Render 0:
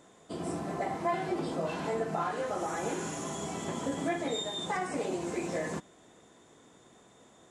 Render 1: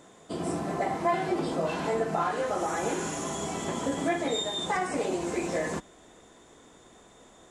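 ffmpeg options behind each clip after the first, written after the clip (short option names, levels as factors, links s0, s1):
-af "asubboost=boost=5.5:cutoff=50,volume=1.68"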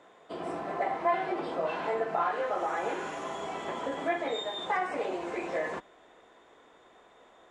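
-filter_complex "[0:a]acrossover=split=390 3500:gain=0.2 1 0.112[s0][s1][s2];[s0][s1][s2]amix=inputs=3:normalize=0"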